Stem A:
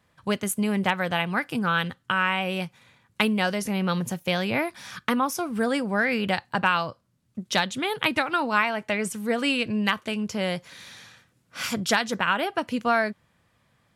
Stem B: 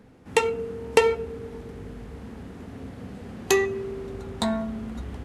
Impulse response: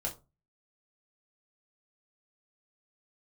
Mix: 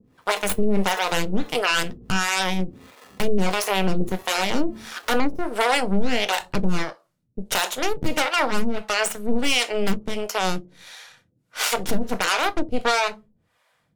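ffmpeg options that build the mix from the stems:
-filter_complex "[0:a]aeval=exprs='0.398*(cos(1*acos(clip(val(0)/0.398,-1,1)))-cos(1*PI/2))+0.158*(cos(8*acos(clip(val(0)/0.398,-1,1)))-cos(8*PI/2))':c=same,volume=1.26,asplit=3[s0][s1][s2];[s1]volume=0.422[s3];[1:a]acompressor=threshold=0.0501:ratio=6,acrusher=samples=29:mix=1:aa=0.000001,volume=0.891[s4];[s2]apad=whole_len=231288[s5];[s4][s5]sidechaincompress=threshold=0.1:ratio=8:attack=16:release=101[s6];[2:a]atrim=start_sample=2205[s7];[s3][s7]afir=irnorm=-1:irlink=0[s8];[s0][s6][s8]amix=inputs=3:normalize=0,lowshelf=f=150:g=-7.5,acrossover=split=440[s9][s10];[s9]aeval=exprs='val(0)*(1-1/2+1/2*cos(2*PI*1.5*n/s))':c=same[s11];[s10]aeval=exprs='val(0)*(1-1/2-1/2*cos(2*PI*1.5*n/s))':c=same[s12];[s11][s12]amix=inputs=2:normalize=0,alimiter=limit=0.335:level=0:latency=1:release=18"

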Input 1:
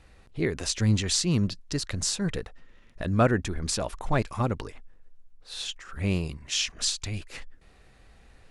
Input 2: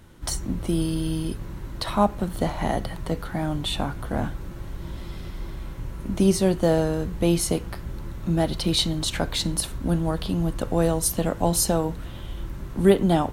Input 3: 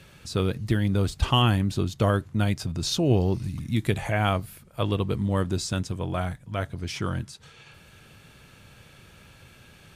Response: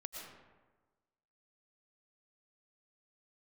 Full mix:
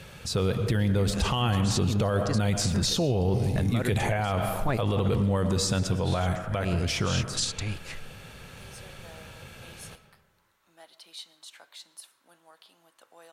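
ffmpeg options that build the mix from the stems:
-filter_complex "[0:a]adelay=550,volume=1.06[s0];[1:a]highpass=1000,adelay=2400,volume=0.1,asplit=2[s1][s2];[s2]volume=0.188[s3];[2:a]equalizer=f=315:t=o:w=0.33:g=-6,equalizer=f=500:t=o:w=0.33:g=5,equalizer=f=800:t=o:w=0.33:g=3,asoftclip=type=hard:threshold=0.398,volume=1.33,asplit=3[s4][s5][s6];[s5]volume=0.631[s7];[s6]apad=whole_len=399211[s8];[s0][s8]sidechaincompress=threshold=0.0501:ratio=8:attack=16:release=199[s9];[3:a]atrim=start_sample=2205[s10];[s3][s7]amix=inputs=2:normalize=0[s11];[s11][s10]afir=irnorm=-1:irlink=0[s12];[s9][s1][s4][s12]amix=inputs=4:normalize=0,alimiter=limit=0.141:level=0:latency=1:release=35"

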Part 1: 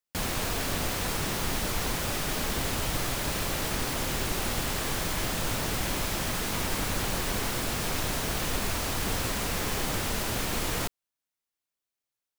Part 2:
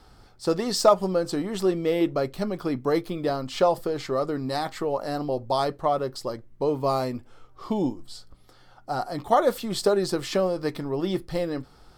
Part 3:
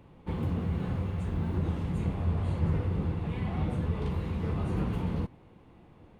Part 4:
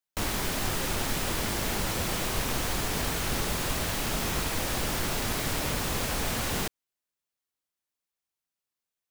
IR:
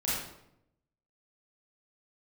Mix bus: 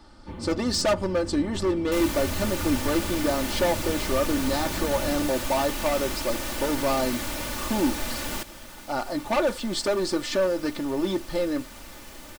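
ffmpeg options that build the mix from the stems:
-filter_complex "[0:a]adelay=2350,volume=0.178[s0];[1:a]lowpass=f=9200:w=0.5412,lowpass=f=9200:w=1.3066,volume=12.6,asoftclip=hard,volume=0.0794,volume=1.06[s1];[2:a]volume=0.668[s2];[3:a]adelay=1750,volume=0.708[s3];[s0][s1][s2][s3]amix=inputs=4:normalize=0,equalizer=f=69:w=1.3:g=-4,aecho=1:1:3.4:0.62"

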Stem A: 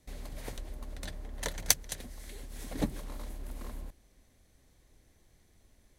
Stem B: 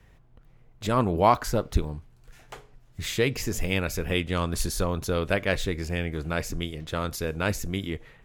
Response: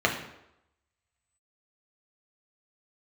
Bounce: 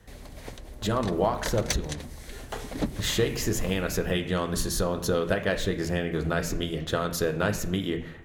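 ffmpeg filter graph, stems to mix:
-filter_complex "[0:a]acrossover=split=7100[s0][s1];[s1]acompressor=threshold=0.00126:ratio=4:attack=1:release=60[s2];[s0][s2]amix=inputs=2:normalize=0,highpass=47,asoftclip=type=tanh:threshold=0.0668,volume=1.26[s3];[1:a]acompressor=threshold=0.0398:ratio=10,aeval=exprs='0.133*(cos(1*acos(clip(val(0)/0.133,-1,1)))-cos(1*PI/2))+0.00299*(cos(3*acos(clip(val(0)/0.133,-1,1)))-cos(3*PI/2))':c=same,volume=1.06,asplit=2[s4][s5];[s5]volume=0.168[s6];[2:a]atrim=start_sample=2205[s7];[s6][s7]afir=irnorm=-1:irlink=0[s8];[s3][s4][s8]amix=inputs=3:normalize=0,dynaudnorm=f=630:g=3:m=1.5"

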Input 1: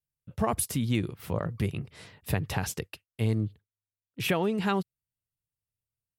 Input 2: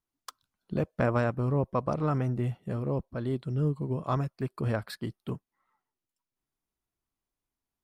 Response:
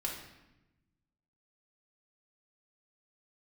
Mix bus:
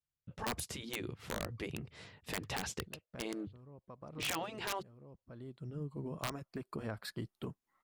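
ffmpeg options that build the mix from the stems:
-filter_complex "[0:a]lowpass=6500,volume=0.631,asplit=2[s0][s1];[1:a]acompressor=threshold=0.0126:ratio=3,adelay=2150,volume=1[s2];[s1]apad=whole_len=440367[s3];[s2][s3]sidechaincompress=threshold=0.00316:ratio=10:attack=33:release=795[s4];[s0][s4]amix=inputs=2:normalize=0,afftfilt=real='re*lt(hypot(re,im),0.126)':imag='im*lt(hypot(re,im),0.126)':win_size=1024:overlap=0.75,equalizer=f=7000:w=7.4:g=3,aeval=exprs='(mod(23.7*val(0)+1,2)-1)/23.7':c=same"

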